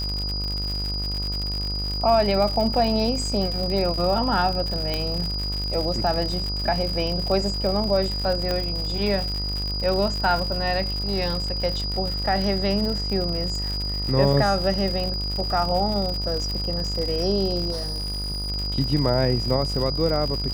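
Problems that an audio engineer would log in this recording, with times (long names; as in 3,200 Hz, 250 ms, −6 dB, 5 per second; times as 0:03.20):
mains buzz 50 Hz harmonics 28 −29 dBFS
surface crackle 120 per second −27 dBFS
whistle 4,900 Hz −28 dBFS
0:04.94: click −11 dBFS
0:08.51: click −12 dBFS
0:17.71–0:18.50: clipping −25 dBFS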